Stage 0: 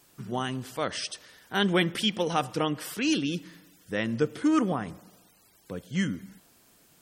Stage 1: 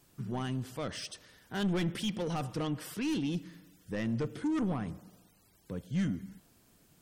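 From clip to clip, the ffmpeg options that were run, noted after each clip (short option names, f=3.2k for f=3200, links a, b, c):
-af "asoftclip=type=tanh:threshold=-25.5dB,lowshelf=f=260:g=11,volume=-6.5dB"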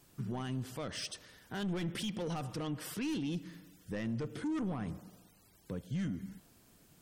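-af "alimiter=level_in=7dB:limit=-24dB:level=0:latency=1:release=142,volume=-7dB,volume=1dB"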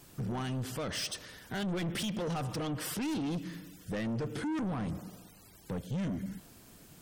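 -af "asoftclip=type=tanh:threshold=-39dB,volume=8dB"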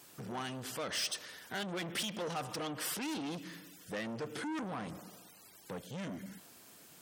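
-af "highpass=f=550:p=1,volume=1dB"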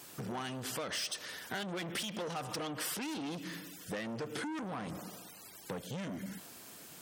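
-af "acompressor=threshold=-41dB:ratio=6,volume=5.5dB"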